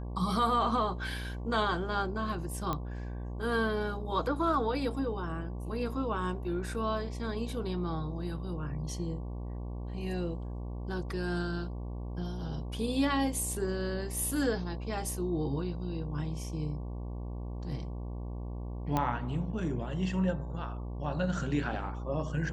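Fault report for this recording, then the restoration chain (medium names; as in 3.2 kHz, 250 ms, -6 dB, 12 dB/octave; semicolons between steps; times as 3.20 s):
buzz 60 Hz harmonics 19 -38 dBFS
2.73 s: pop -19 dBFS
18.97 s: pop -16 dBFS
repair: de-click; de-hum 60 Hz, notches 19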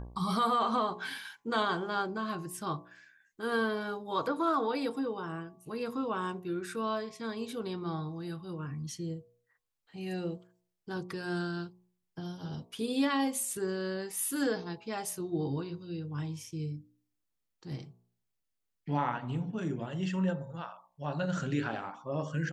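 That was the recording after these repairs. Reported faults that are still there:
nothing left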